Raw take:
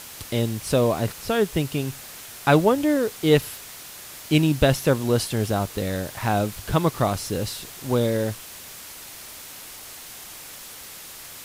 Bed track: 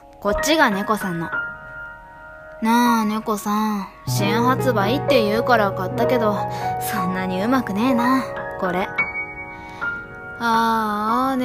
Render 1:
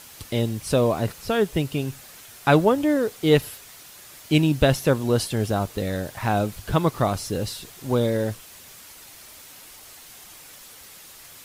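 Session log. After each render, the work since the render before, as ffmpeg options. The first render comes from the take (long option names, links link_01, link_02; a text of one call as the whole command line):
ffmpeg -i in.wav -af "afftdn=noise_reduction=6:noise_floor=-41" out.wav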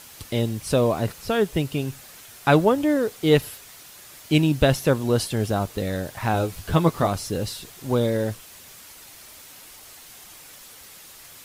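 ffmpeg -i in.wav -filter_complex "[0:a]asettb=1/sr,asplit=3[link_01][link_02][link_03];[link_01]atrim=end=6.334[link_04];[link_02]atrim=start=6.33:end=7.08,asetpts=PTS-STARTPTS,afade=type=in:duration=0.004:curve=qsin,afade=type=out:start_time=0.746:duration=0.004:curve=qsin,asplit=2[link_05][link_06];[link_06]adelay=12,volume=-6dB[link_07];[link_05][link_07]amix=inputs=2:normalize=0,atrim=end_sample=33075[link_08];[link_03]atrim=start=7.076[link_09];[link_04][link_08]acrossfade=duration=0.004:curve1=hsin:curve2=qsin[link_10];[link_10][link_09]acrossfade=duration=0.004:curve1=qsin:curve2=hsin" out.wav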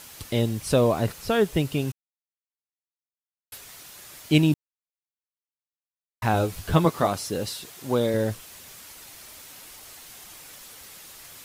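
ffmpeg -i in.wav -filter_complex "[0:a]asettb=1/sr,asplit=3[link_01][link_02][link_03];[link_01]atrim=end=6.854[link_04];[link_02]atrim=start=6.85:end=8.14,asetpts=PTS-STARTPTS,afade=type=in:duration=0.004:curve=qsin,afade=type=out:start_time=1.286:duration=0.004:curve=qsin,highpass=frequency=200:poles=1[link_05];[link_03]atrim=start=8.136[link_06];[link_04][link_05]acrossfade=duration=0.004:curve1=hsin:curve2=qsin[link_07];[link_07][link_06]acrossfade=duration=0.004:curve1=qsin:curve2=hsin,asplit=5[link_08][link_09][link_10][link_11][link_12];[link_08]atrim=end=1.92,asetpts=PTS-STARTPTS,afade=type=out:start_time=1.916:duration=0.004:curve=hsin[link_13];[link_09]atrim=start=1.92:end=3.52,asetpts=PTS-STARTPTS,volume=0[link_14];[link_10]atrim=start=3.52:end=4.54,asetpts=PTS-STARTPTS,afade=type=in:duration=0.004:curve=hsin,afade=type=out:start_time=1.016:duration=0.004:curve=hsin[link_15];[link_11]atrim=start=4.54:end=6.22,asetpts=PTS-STARTPTS,volume=0[link_16];[link_12]atrim=start=6.22,asetpts=PTS-STARTPTS,afade=type=in:duration=0.004:curve=hsin[link_17];[link_13][link_14][link_15][link_16][link_17]concat=n=5:v=0:a=1" out.wav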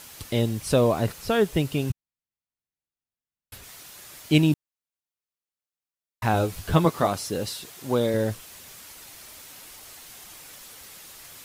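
ffmpeg -i in.wav -filter_complex "[0:a]asettb=1/sr,asplit=3[link_01][link_02][link_03];[link_01]atrim=end=1.904[link_04];[link_02]atrim=start=1.9:end=3.64,asetpts=PTS-STARTPTS,afade=type=in:duration=0.004:curve=qsin,afade=type=out:start_time=1.736:duration=0.004:curve=qsin,bass=frequency=250:gain=12,treble=frequency=4000:gain=-4[link_05];[link_03]atrim=start=3.636[link_06];[link_04][link_05]acrossfade=duration=0.004:curve1=hsin:curve2=qsin[link_07];[link_07][link_06]acrossfade=duration=0.004:curve1=qsin:curve2=hsin" out.wav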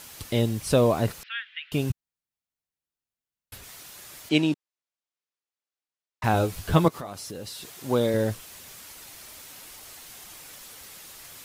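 ffmpeg -i in.wav -filter_complex "[0:a]asettb=1/sr,asplit=3[link_01][link_02][link_03];[link_01]atrim=end=1.234[link_04];[link_02]atrim=start=1.23:end=1.72,asetpts=PTS-STARTPTS,afade=type=in:duration=0.004:curve=qsin,afade=type=out:start_time=0.486:duration=0.004:curve=qsin,asuperpass=centerf=2300:order=8:qfactor=1.2[link_05];[link_03]atrim=start=1.716[link_06];[link_04][link_05]acrossfade=duration=0.004:curve1=hsin:curve2=qsin[link_07];[link_07][link_06]acrossfade=duration=0.004:curve1=qsin:curve2=hsin,asettb=1/sr,asplit=3[link_08][link_09][link_10];[link_08]atrim=end=4.294[link_11];[link_09]atrim=start=4.29:end=6.24,asetpts=PTS-STARTPTS,afade=type=in:duration=0.004:curve=qsin,afade=type=out:start_time=1.946:duration=0.004:curve=qsin,highpass=260,lowpass=6700[link_12];[link_10]atrim=start=6.236[link_13];[link_11][link_12]acrossfade=duration=0.004:curve1=hsin:curve2=qsin[link_14];[link_14][link_13]acrossfade=duration=0.004:curve1=qsin:curve2=hsin,asettb=1/sr,asplit=3[link_15][link_16][link_17];[link_15]atrim=end=6.884[link_18];[link_16]atrim=start=6.88:end=7.79,asetpts=PTS-STARTPTS,afade=type=in:duration=0.004:curve=qsin,afade=type=out:start_time=0.906:duration=0.004:curve=qsin,acompressor=threshold=-35dB:ratio=4:attack=3.2:release=140:knee=1:detection=peak[link_19];[link_17]atrim=start=7.786[link_20];[link_18][link_19]acrossfade=duration=0.004:curve1=hsin:curve2=qsin[link_21];[link_21][link_20]acrossfade=duration=0.004:curve1=qsin:curve2=hsin" out.wav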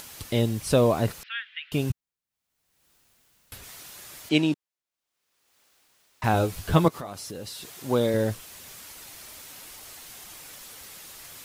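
ffmpeg -i in.wav -af "acompressor=mode=upward:threshold=-41dB:ratio=2.5" out.wav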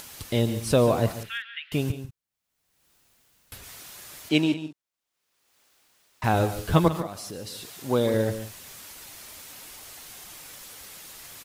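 ffmpeg -i in.wav -af "aecho=1:1:143|188:0.237|0.119" out.wav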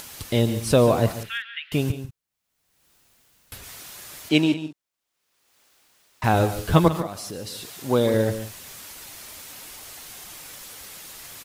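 ffmpeg -i in.wav -af "volume=3dB" out.wav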